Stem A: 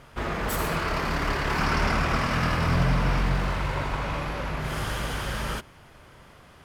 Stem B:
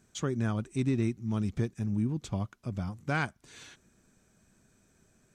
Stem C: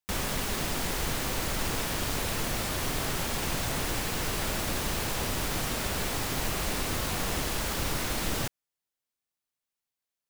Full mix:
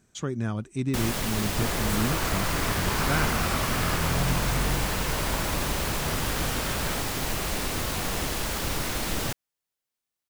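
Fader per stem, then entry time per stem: -4.0 dB, +1.0 dB, +1.5 dB; 1.40 s, 0.00 s, 0.85 s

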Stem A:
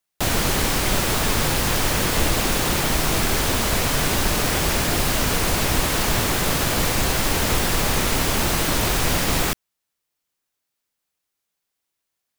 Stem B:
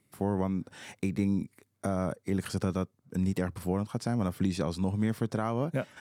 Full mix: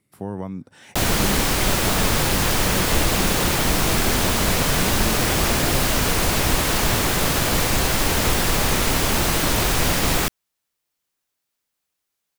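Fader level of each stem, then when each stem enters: +1.0 dB, -0.5 dB; 0.75 s, 0.00 s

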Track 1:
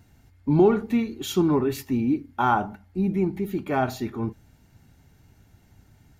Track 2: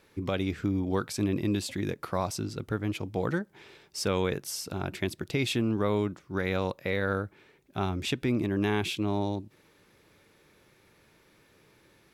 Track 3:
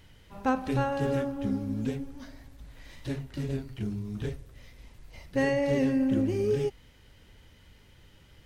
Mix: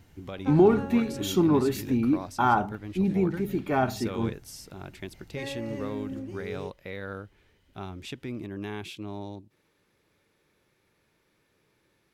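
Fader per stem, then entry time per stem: -1.0 dB, -8.5 dB, -11.0 dB; 0.00 s, 0.00 s, 0.00 s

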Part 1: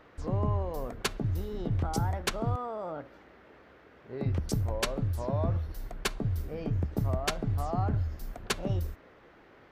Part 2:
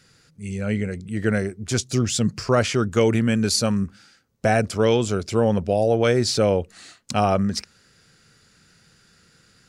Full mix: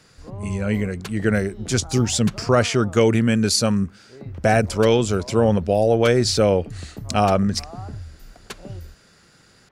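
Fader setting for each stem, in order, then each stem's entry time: -5.0 dB, +2.0 dB; 0.00 s, 0.00 s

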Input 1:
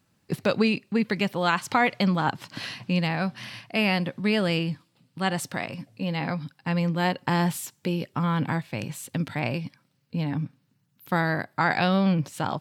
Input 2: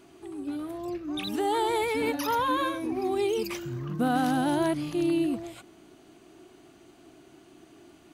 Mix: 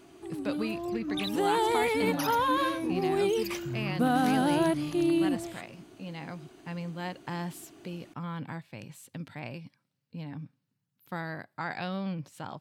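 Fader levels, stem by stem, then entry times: -12.0 dB, 0.0 dB; 0.00 s, 0.00 s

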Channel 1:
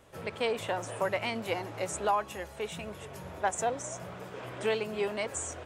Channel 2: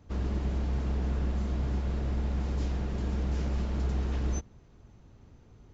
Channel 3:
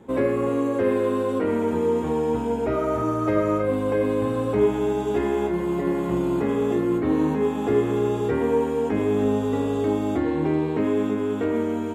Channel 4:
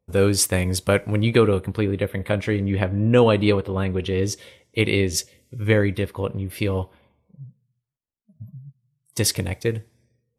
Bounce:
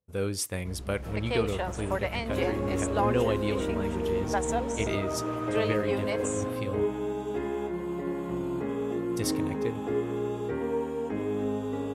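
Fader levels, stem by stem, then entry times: -0.5 dB, -10.5 dB, -8.5 dB, -12.0 dB; 0.90 s, 0.55 s, 2.20 s, 0.00 s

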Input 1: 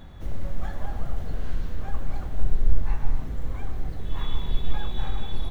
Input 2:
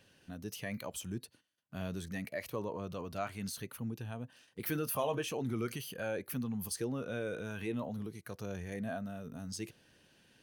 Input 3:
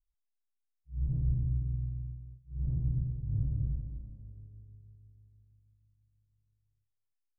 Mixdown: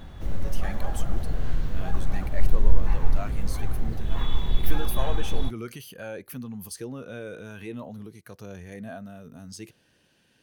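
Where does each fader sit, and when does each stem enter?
+2.0 dB, +0.5 dB, -8.5 dB; 0.00 s, 0.00 s, 0.30 s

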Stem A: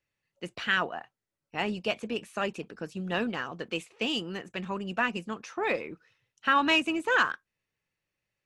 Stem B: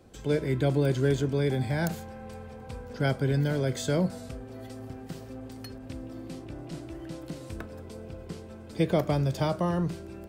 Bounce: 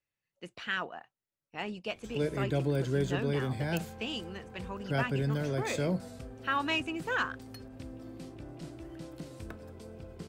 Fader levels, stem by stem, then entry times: -7.0 dB, -5.0 dB; 0.00 s, 1.90 s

